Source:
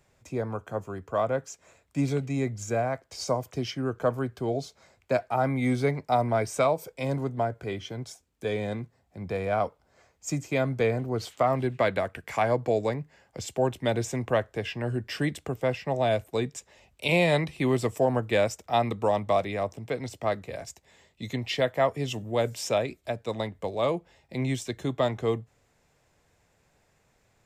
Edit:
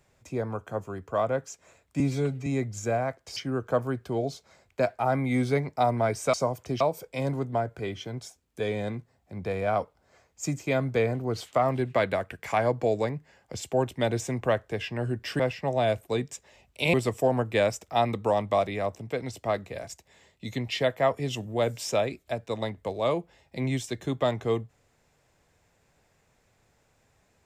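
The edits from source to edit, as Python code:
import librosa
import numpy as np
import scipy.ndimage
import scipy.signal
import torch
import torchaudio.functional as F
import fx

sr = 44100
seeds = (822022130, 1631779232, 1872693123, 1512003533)

y = fx.edit(x, sr, fx.stretch_span(start_s=2.0, length_s=0.31, factor=1.5),
    fx.move(start_s=3.21, length_s=0.47, to_s=6.65),
    fx.cut(start_s=15.24, length_s=0.39),
    fx.cut(start_s=17.17, length_s=0.54), tone=tone)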